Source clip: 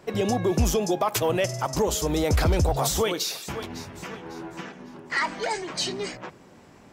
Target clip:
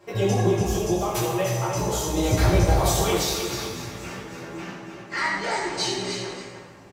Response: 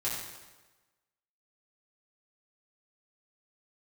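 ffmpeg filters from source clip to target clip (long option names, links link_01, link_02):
-filter_complex "[0:a]asettb=1/sr,asplit=3[link_01][link_02][link_03];[link_01]atrim=end=0.474[link_04];[link_02]atrim=start=0.47:end=2.17,asetpts=PTS-STARTPTS,afade=type=in:duration=0.004:curve=qsin,afade=type=out:start_time=1.696:duration=0.004:curve=qsin,acompressor=threshold=-24dB:ratio=6[link_05];[link_03]atrim=start=2.166[link_06];[link_04][link_05]acrossfade=duration=0.004:curve1=hsin:curve2=qsin[link_07];[link_07][link_06]acrossfade=duration=0.004:curve1=qsin:curve2=hsin,aecho=1:1:308:0.422[link_08];[1:a]atrim=start_sample=2205[link_09];[link_08][link_09]afir=irnorm=-1:irlink=0,volume=-3.5dB"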